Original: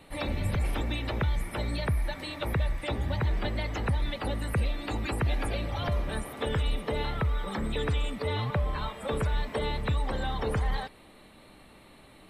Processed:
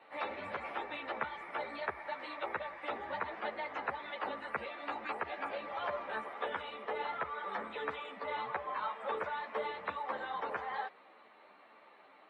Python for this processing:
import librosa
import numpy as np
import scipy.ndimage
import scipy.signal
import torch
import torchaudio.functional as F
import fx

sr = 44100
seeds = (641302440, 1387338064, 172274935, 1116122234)

y = scipy.signal.sosfilt(scipy.signal.butter(2, 710.0, 'highpass', fs=sr, output='sos'), x)
y = fx.rider(y, sr, range_db=10, speed_s=0.5)
y = scipy.signal.sosfilt(scipy.signal.butter(2, 1700.0, 'lowpass', fs=sr, output='sos'), y)
y = fx.ensemble(y, sr)
y = y * librosa.db_to_amplitude(4.5)